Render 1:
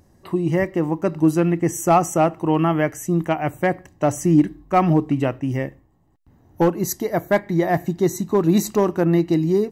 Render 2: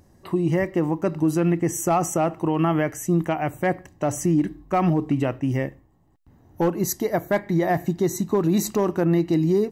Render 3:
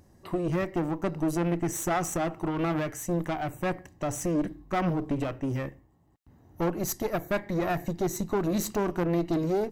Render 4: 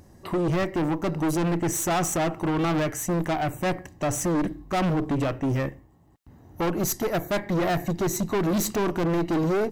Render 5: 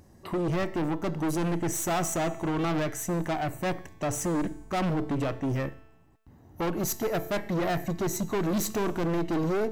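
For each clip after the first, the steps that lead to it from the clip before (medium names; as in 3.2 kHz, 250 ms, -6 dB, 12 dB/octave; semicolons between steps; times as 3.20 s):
peak limiter -12.5 dBFS, peak gain reduction 6.5 dB
single-diode clipper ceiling -30 dBFS; trim -2.5 dB
hard clipper -28 dBFS, distortion -9 dB; trim +6.5 dB
feedback comb 220 Hz, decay 1.2 s, mix 60%; trim +4 dB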